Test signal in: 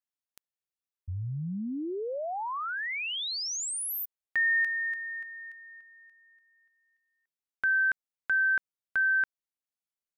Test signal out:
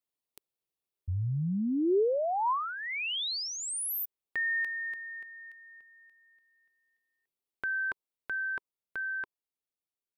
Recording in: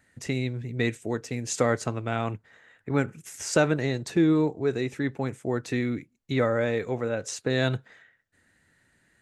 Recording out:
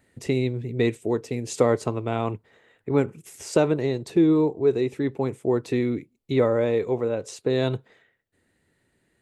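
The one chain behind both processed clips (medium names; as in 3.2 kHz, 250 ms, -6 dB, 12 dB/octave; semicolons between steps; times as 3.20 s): dynamic bell 1 kHz, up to +6 dB, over -50 dBFS, Q 4.2; gain riding within 3 dB 2 s; fifteen-band graphic EQ 400 Hz +7 dB, 1.6 kHz -8 dB, 6.3 kHz -6 dB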